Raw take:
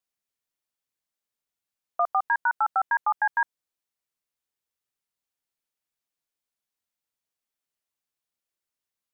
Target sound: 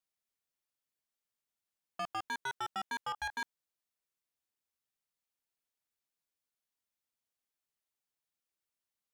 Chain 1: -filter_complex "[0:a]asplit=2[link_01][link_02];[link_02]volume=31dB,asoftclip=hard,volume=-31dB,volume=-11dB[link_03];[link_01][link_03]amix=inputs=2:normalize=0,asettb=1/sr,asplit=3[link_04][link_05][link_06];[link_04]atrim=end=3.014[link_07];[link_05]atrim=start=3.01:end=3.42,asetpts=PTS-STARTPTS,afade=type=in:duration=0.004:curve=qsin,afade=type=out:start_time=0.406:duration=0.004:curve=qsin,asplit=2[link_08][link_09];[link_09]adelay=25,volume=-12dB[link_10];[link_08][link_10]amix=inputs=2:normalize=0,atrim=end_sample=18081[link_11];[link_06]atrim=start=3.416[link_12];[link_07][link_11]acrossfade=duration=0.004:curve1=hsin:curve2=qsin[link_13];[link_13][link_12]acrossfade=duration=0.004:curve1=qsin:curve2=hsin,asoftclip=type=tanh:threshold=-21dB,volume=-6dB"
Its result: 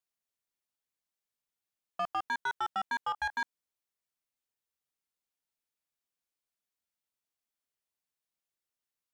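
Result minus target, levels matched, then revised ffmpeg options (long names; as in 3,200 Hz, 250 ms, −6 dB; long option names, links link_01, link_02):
soft clipping: distortion −6 dB
-filter_complex "[0:a]asplit=2[link_01][link_02];[link_02]volume=31dB,asoftclip=hard,volume=-31dB,volume=-11dB[link_03];[link_01][link_03]amix=inputs=2:normalize=0,asettb=1/sr,asplit=3[link_04][link_05][link_06];[link_04]atrim=end=3.014[link_07];[link_05]atrim=start=3.01:end=3.42,asetpts=PTS-STARTPTS,afade=type=in:duration=0.004:curve=qsin,afade=type=out:start_time=0.406:duration=0.004:curve=qsin,asplit=2[link_08][link_09];[link_09]adelay=25,volume=-12dB[link_10];[link_08][link_10]amix=inputs=2:normalize=0,atrim=end_sample=18081[link_11];[link_06]atrim=start=3.416[link_12];[link_07][link_11]acrossfade=duration=0.004:curve1=hsin:curve2=qsin[link_13];[link_13][link_12]acrossfade=duration=0.004:curve1=qsin:curve2=hsin,asoftclip=type=tanh:threshold=-28dB,volume=-6dB"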